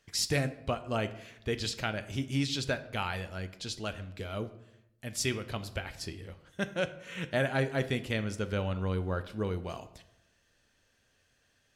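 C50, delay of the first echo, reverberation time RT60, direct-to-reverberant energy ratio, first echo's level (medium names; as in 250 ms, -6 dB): 14.5 dB, no echo, 0.85 s, 10.0 dB, no echo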